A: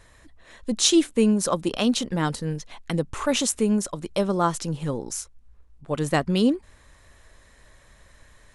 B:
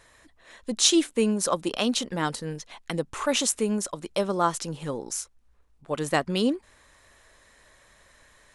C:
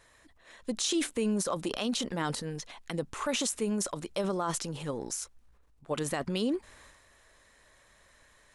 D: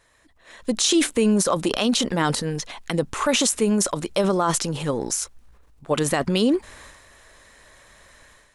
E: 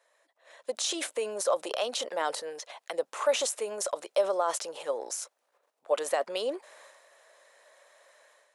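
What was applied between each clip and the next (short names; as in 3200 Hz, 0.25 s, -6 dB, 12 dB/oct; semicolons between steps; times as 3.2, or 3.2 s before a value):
low shelf 200 Hz -11.5 dB
transient shaper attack +3 dB, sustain +8 dB; limiter -16 dBFS, peak gain reduction 10.5 dB; gain -5 dB
AGC gain up to 10.5 dB
ladder high-pass 500 Hz, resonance 55%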